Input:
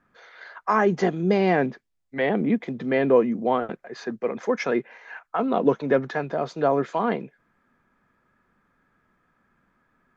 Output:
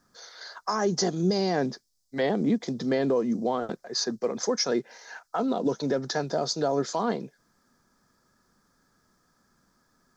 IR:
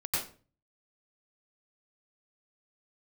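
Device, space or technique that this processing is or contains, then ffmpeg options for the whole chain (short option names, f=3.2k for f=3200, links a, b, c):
over-bright horn tweeter: -filter_complex "[0:a]highshelf=f=3.6k:t=q:w=3:g=13,alimiter=limit=-16dB:level=0:latency=1:release=140,asettb=1/sr,asplit=3[a][b][c];[a]atrim=end=4.694[d];[b]atrim=start=4.69:end=6.86,asetpts=PTS-STARTPTS,afade=t=in:d=0.004:c=qsin,afade=t=out:st=2.166:d=0.004:c=qsin,bandreject=f=1.1k:w=9.3[e];[c]atrim=start=6.856[f];[d][e]acrossfade=d=0.004:c1=hsin:c2=qsin[g];[g][f]acrossfade=d=0.004:c1=qsin:c2=hsin"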